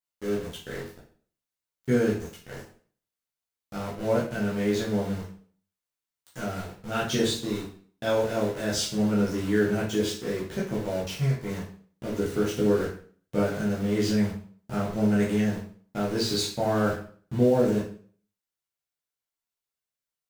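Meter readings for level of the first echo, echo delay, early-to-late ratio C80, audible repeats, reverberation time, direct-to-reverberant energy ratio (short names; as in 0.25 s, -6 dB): none, none, 10.0 dB, none, 0.50 s, -6.5 dB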